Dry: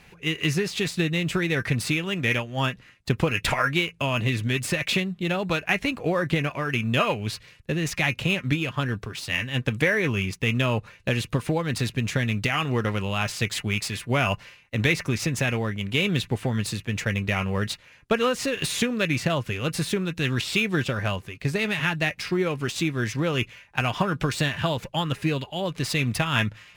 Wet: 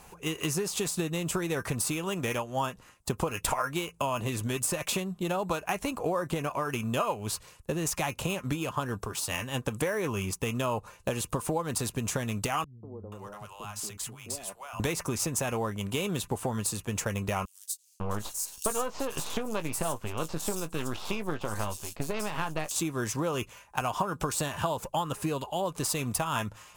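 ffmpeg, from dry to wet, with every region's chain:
-filter_complex "[0:a]asettb=1/sr,asplit=3[a][b][c];[a]atrim=end=12.644[d];[b]atrim=start=12.64:end=14.8,asetpts=PTS-STARTPTS,afade=t=in:d=0.004:c=qsin,afade=t=out:st=2.156:d=0.004:c=qsin,acompressor=threshold=-38dB:ratio=4:attack=3.2:release=140:knee=1:detection=peak,acrossover=split=190|670[e][f][g];[f]adelay=190[h];[g]adelay=480[i];[e][h][i]amix=inputs=3:normalize=0,atrim=end_sample=95256[j];[c]atrim=start=14.796[k];[d][j]acrossfade=d=0.004:c1=hsin:c2=qsin[l];[l][k]acrossfade=d=0.004:c1=qsin:c2=hsin,asettb=1/sr,asplit=3[m][n][o];[m]atrim=end=17.454[p];[n]atrim=start=17.45:end=22.71,asetpts=PTS-STARTPTS,afade=t=in:d=0.004:c=qsin,afade=t=out:st=5.256:d=0.004:c=qsin,aeval=exprs='if(lt(val(0),0),0.251*val(0),val(0))':c=same,asplit=2[q][r];[r]adelay=19,volume=-13dB[s];[q][s]amix=inputs=2:normalize=0,atrim=end_sample=231966,acrossover=split=4600[t][u];[t]adelay=550[v];[v][u]amix=inputs=2:normalize=0,atrim=end_sample=231966[w];[o]atrim=start=22.706[x];[p][w]acrossfade=d=0.004:c1=hsin:c2=qsin[y];[y][x]acrossfade=d=0.004:c1=qsin:c2=hsin,equalizer=f=125:t=o:w=1:g=-7,equalizer=f=250:t=o:w=1:g=-3,equalizer=f=1k:t=o:w=1:g=8,equalizer=f=2k:t=o:w=1:g=-12,equalizer=f=4k:t=o:w=1:g=-6,equalizer=f=8k:t=o:w=1:g=6,equalizer=f=16k:t=o:w=1:g=8,acompressor=threshold=-30dB:ratio=3,volume=2dB"

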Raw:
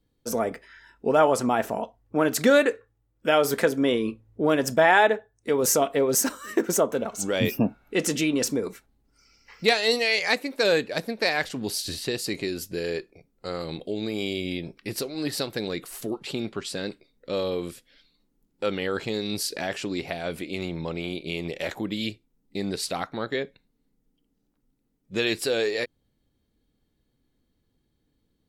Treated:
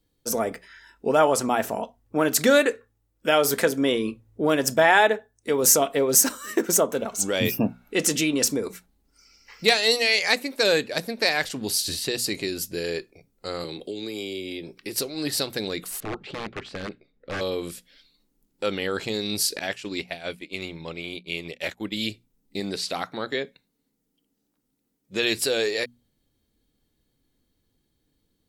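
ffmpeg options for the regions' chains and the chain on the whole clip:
-filter_complex "[0:a]asettb=1/sr,asplit=3[a][b][c];[a]atrim=end=13.644[d];[b]atrim=start=13.64:end=14.96,asetpts=PTS-STARTPTS,afade=t=in:d=0.004:c=qsin,afade=t=out:st=1.316:d=0.004:c=qsin,bandreject=f=650:w=11,acrossover=split=110|370|2100[e][f][g][h];[e]acompressor=threshold=-58dB:ratio=3[i];[f]acompressor=threshold=-44dB:ratio=3[j];[g]acompressor=threshold=-42dB:ratio=3[k];[h]acompressor=threshold=-41dB:ratio=3[l];[i][j][k][l]amix=inputs=4:normalize=0,equalizer=f=360:w=1.6:g=6.5[m];[c]atrim=start=14.956[n];[d][m]acrossfade=d=0.004:c1=hsin:c2=qsin[o];[o][n]acrossfade=d=0.004:c1=qsin:c2=hsin,asettb=1/sr,asplit=3[p][q][r];[p]atrim=end=16.004[s];[q]atrim=start=16:end=17.41,asetpts=PTS-STARTPTS,afade=t=in:d=0.004:c=qsin,afade=t=out:st=1.406:d=0.004:c=qsin,aeval=exprs='(mod(15*val(0)+1,2)-1)/15':c=same,lowpass=2.1k,bandreject=f=960:w=7.7[t];[r]atrim=start=17.406[u];[s][t]acrossfade=d=0.004:c1=hsin:c2=qsin[v];[v][u]acrossfade=d=0.004:c1=qsin:c2=hsin,asettb=1/sr,asplit=3[w][x][y];[w]atrim=end=19.594[z];[x]atrim=start=19.59:end=21.96,asetpts=PTS-STARTPTS,afade=t=in:d=0.004:c=qsin,afade=t=out:st=2.366:d=0.004:c=qsin,agate=range=-33dB:threshold=-27dB:ratio=3:release=100:detection=peak,equalizer=f=2.5k:w=0.96:g=5[aa];[y]atrim=start=21.956[ab];[z][aa]acrossfade=d=0.004:c1=hsin:c2=qsin[ac];[ac][ab]acrossfade=d=0.004:c1=qsin:c2=hsin,asettb=1/sr,asplit=3[ad][ae][af];[ad]atrim=end=22.604[ag];[ae]atrim=start=22.6:end=25.23,asetpts=PTS-STARTPTS,afade=t=in:d=0.004:c=qsin,afade=t=out:st=2.626:d=0.004:c=qsin,highpass=f=140:p=1,acrossover=split=5700[ah][ai];[ai]acompressor=threshold=-47dB:ratio=4:attack=1:release=60[aj];[ah][aj]amix=inputs=2:normalize=0[ak];[af]atrim=start=25.226[al];[ag][ak]acrossfade=d=0.004:c1=hsin:c2=qsin[am];[am][al]acrossfade=d=0.004:c1=qsin:c2=hsin,highshelf=f=3.7k:g=7.5,bandreject=f=60:t=h:w=6,bandreject=f=120:t=h:w=6,bandreject=f=180:t=h:w=6,bandreject=f=240:t=h:w=6"

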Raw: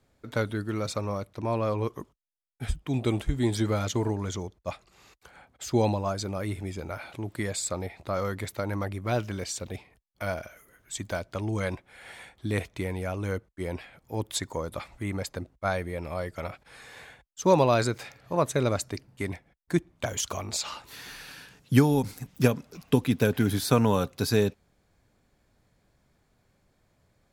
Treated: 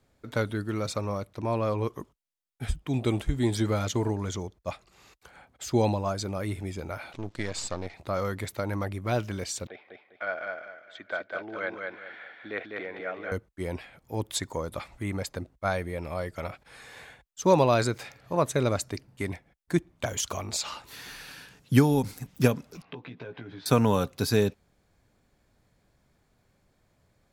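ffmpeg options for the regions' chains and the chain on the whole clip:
-filter_complex "[0:a]asettb=1/sr,asplit=3[a][b][c];[a]atrim=end=7.134[d];[b]atrim=start=7.13:end=7.94,asetpts=PTS-STARTPTS,afade=t=in:d=0.004:c=qsin,afade=t=out:st=0.806:d=0.004:c=qsin,aeval=exprs='if(lt(val(0),0),0.251*val(0),val(0))':c=same,lowpass=f=5.9k:t=q:w=1.6[e];[c]atrim=start=7.936[f];[d][e]acrossfade=d=0.004:c1=hsin:c2=qsin[g];[g][f]acrossfade=d=0.004:c1=qsin:c2=hsin,asettb=1/sr,asplit=3[h][i][j];[h]atrim=end=9.674[k];[i]atrim=start=9.67:end=13.32,asetpts=PTS-STARTPTS,afade=t=in:d=0.004:c=qsin,afade=t=out:st=3.646:d=0.004:c=qsin,highpass=490,equalizer=f=940:t=q:w=4:g=-8,equalizer=f=1.5k:t=q:w=4:g=6,equalizer=f=2.7k:t=q:w=4:g=-6,lowpass=f=3.2k:w=0.5412,lowpass=f=3.2k:w=1.3066,aecho=1:1:201|402|603|804:0.668|0.207|0.0642|0.0199,atrim=end_sample=160965[l];[j]atrim=start=13.316[m];[k][l]acrossfade=d=0.004:c1=hsin:c2=qsin[n];[n][m]acrossfade=d=0.004:c1=qsin:c2=hsin,asettb=1/sr,asplit=3[o][p][q];[o]atrim=end=22.824[r];[p]atrim=start=22.82:end=23.66,asetpts=PTS-STARTPTS,afade=t=in:d=0.004:c=qsin,afade=t=out:st=0.836:d=0.004:c=qsin,acompressor=threshold=-37dB:ratio=5:attack=3.2:release=140:knee=1:detection=peak,highpass=140,equalizer=f=220:t=q:w=4:g=-9,equalizer=f=950:t=q:w=4:g=3,equalizer=f=3.1k:t=q:w=4:g=-4,lowpass=f=3.5k:w=0.5412,lowpass=f=3.5k:w=1.3066,asplit=2[s][t];[t]adelay=17,volume=-5dB[u];[s][u]amix=inputs=2:normalize=0,atrim=end_sample=37044[v];[q]atrim=start=23.656[w];[r][v]acrossfade=d=0.004:c1=hsin:c2=qsin[x];[x][w]acrossfade=d=0.004:c1=qsin:c2=hsin"

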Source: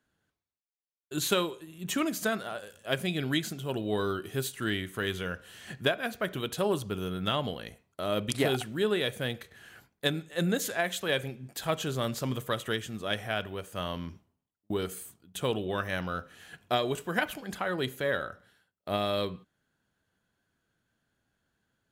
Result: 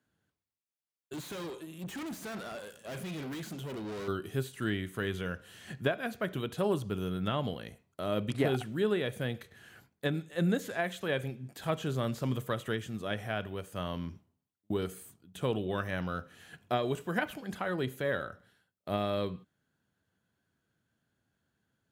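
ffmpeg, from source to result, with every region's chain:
-filter_complex "[0:a]asettb=1/sr,asplit=3[a][b][c];[a]atrim=end=1.134[d];[b]atrim=start=1.13:end=4.08,asetpts=PTS-STARTPTS,afade=t=in:d=0.004:c=qsin,afade=t=out:st=2.946:d=0.004:c=qsin,equalizer=f=87:w=1.5:g=-13.5,acontrast=63,aeval=exprs='(tanh(63.1*val(0)+0.35)-tanh(0.35))/63.1':c=same[e];[c]atrim=start=4.076[f];[d][e]acrossfade=d=0.004:c1=hsin:c2=qsin[g];[g][f]acrossfade=d=0.004:c1=qsin:c2=hsin,acrossover=split=2700[h][i];[i]acompressor=threshold=-42dB:ratio=4:attack=1:release=60[j];[h][j]amix=inputs=2:normalize=0,highpass=76,lowshelf=f=280:g=6,volume=-3.5dB"

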